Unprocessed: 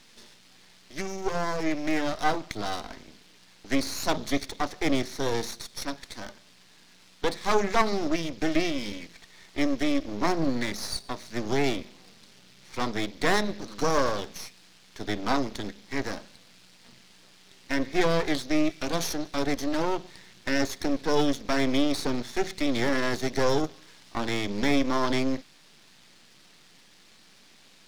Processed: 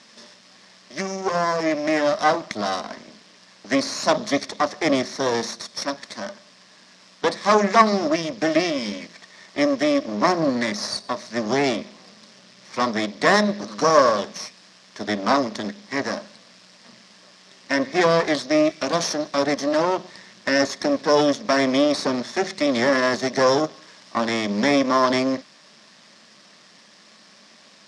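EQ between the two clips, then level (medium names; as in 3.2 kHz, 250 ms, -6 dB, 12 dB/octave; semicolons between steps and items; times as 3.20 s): cabinet simulation 150–8800 Hz, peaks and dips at 210 Hz +8 dB, 600 Hz +10 dB, 1.1 kHz +8 dB, 1.8 kHz +5 dB, 5.3 kHz +7 dB; +3.0 dB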